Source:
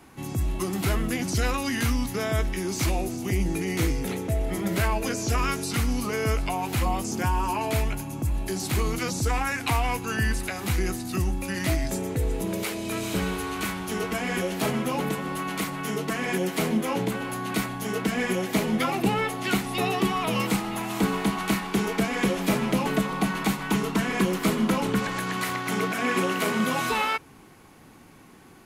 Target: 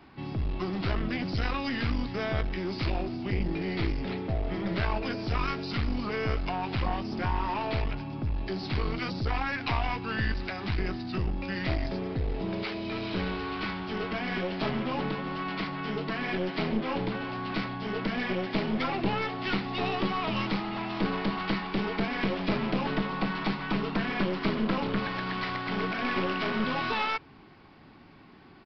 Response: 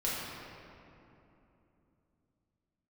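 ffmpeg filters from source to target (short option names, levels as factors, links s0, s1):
-af "bandreject=f=490:w=12,aresample=11025,aeval=exprs='clip(val(0),-1,0.0376)':c=same,aresample=44100,volume=0.794"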